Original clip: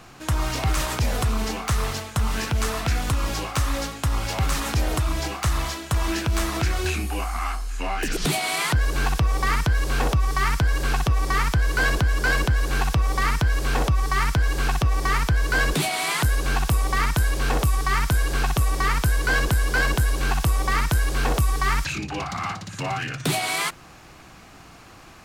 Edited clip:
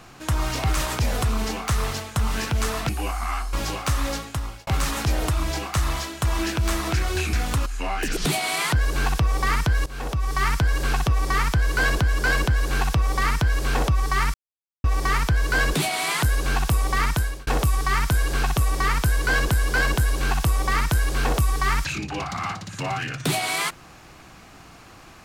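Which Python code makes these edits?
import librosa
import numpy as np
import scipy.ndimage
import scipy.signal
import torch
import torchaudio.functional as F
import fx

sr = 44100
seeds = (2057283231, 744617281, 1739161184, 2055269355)

y = fx.edit(x, sr, fx.swap(start_s=2.89, length_s=0.33, other_s=7.02, other_length_s=0.64),
    fx.fade_out_span(start_s=3.87, length_s=0.49),
    fx.fade_in_from(start_s=9.86, length_s=0.57, floor_db=-17.0),
    fx.silence(start_s=14.34, length_s=0.5),
    fx.fade_out_span(start_s=17.13, length_s=0.34), tone=tone)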